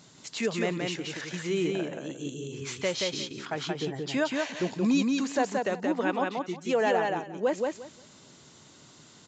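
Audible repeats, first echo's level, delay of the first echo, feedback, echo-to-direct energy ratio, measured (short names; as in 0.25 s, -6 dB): 3, -3.0 dB, 0.177 s, 18%, -3.0 dB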